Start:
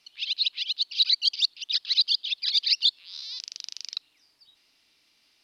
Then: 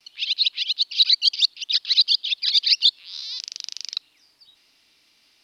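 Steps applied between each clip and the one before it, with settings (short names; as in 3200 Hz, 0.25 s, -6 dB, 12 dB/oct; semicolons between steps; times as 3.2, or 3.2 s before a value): gate with hold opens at -58 dBFS; gain +5 dB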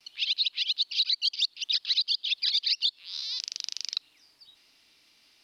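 compressor 6:1, threshold -22 dBFS, peak gain reduction 10 dB; gain -1.5 dB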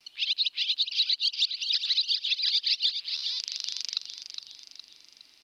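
feedback echo 0.413 s, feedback 47%, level -8 dB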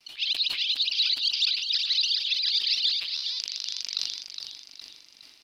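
sustainer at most 50 dB/s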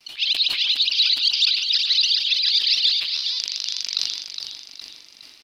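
speakerphone echo 0.14 s, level -10 dB; gain +6 dB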